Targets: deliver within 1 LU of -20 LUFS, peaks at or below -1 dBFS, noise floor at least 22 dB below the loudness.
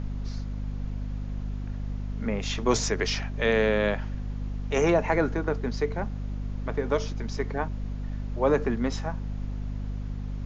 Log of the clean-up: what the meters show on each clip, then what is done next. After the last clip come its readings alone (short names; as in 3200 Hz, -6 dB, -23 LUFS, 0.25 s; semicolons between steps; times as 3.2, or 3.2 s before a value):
hum 50 Hz; harmonics up to 250 Hz; hum level -30 dBFS; noise floor -34 dBFS; noise floor target -51 dBFS; loudness -29.0 LUFS; peak -9.5 dBFS; loudness target -20.0 LUFS
-> notches 50/100/150/200/250 Hz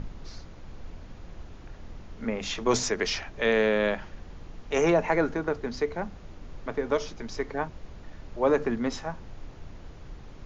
hum none; noise floor -46 dBFS; noise floor target -50 dBFS
-> noise print and reduce 6 dB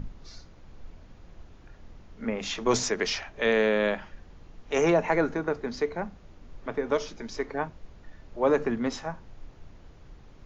noise floor -52 dBFS; loudness -28.0 LUFS; peak -11.0 dBFS; loudness target -20.0 LUFS
-> gain +8 dB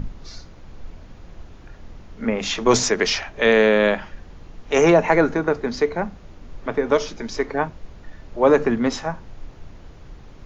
loudness -20.0 LUFS; peak -3.0 dBFS; noise floor -44 dBFS